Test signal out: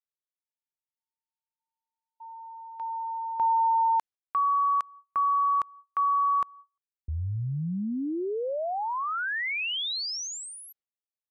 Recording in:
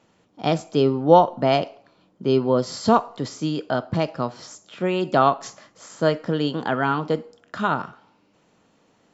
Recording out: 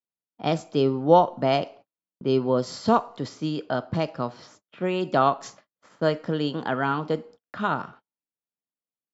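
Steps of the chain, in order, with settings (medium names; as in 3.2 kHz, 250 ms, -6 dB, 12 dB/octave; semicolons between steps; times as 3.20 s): gate -43 dBFS, range -41 dB; level-controlled noise filter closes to 2.6 kHz, open at -16.5 dBFS; trim -3 dB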